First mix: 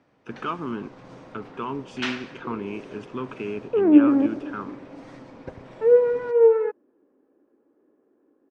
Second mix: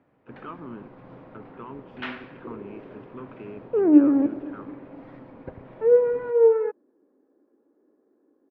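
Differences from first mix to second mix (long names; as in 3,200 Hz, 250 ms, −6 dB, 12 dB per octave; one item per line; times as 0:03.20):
speech −8.0 dB
master: add high-frequency loss of the air 460 metres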